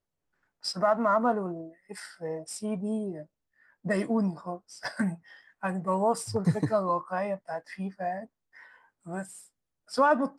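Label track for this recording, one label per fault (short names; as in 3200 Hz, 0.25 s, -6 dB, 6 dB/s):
4.840000	4.840000	gap 3.6 ms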